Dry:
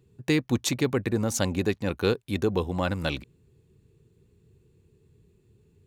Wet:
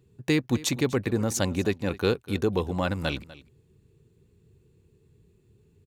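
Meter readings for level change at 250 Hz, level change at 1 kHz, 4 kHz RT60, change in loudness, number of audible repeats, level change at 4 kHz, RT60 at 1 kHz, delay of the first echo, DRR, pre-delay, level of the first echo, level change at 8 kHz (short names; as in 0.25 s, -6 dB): 0.0 dB, 0.0 dB, none, 0.0 dB, 1, 0.0 dB, none, 0.247 s, none, none, -18.5 dB, 0.0 dB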